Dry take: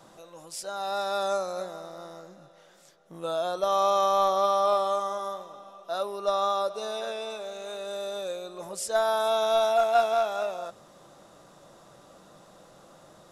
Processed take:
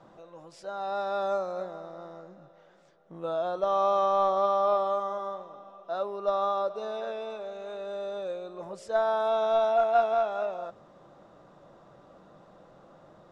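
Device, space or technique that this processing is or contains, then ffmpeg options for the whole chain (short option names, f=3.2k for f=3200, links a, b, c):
through cloth: -af "lowpass=7k,highshelf=f=3.3k:g=-18"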